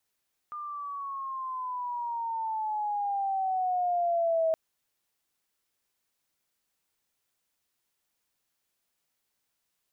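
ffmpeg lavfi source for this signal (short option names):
-f lavfi -i "aevalsrc='pow(10,(-22.5+12.5*(t/4.02-1))/20)*sin(2*PI*1210*4.02/(-11*log(2)/12)*(exp(-11*log(2)/12*t/4.02)-1))':d=4.02:s=44100"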